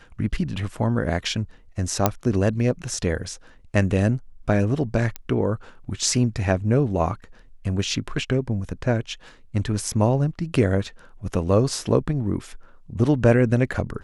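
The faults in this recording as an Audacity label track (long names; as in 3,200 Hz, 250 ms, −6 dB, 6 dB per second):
2.060000	2.060000	click −2 dBFS
5.160000	5.160000	click −14 dBFS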